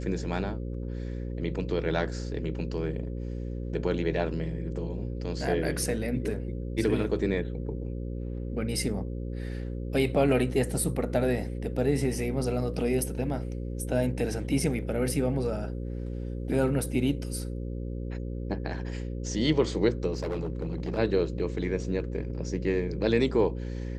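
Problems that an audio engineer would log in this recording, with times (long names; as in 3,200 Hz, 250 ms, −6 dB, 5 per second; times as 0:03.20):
mains buzz 60 Hz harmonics 9 −34 dBFS
0:20.12–0:20.99: clipping −27 dBFS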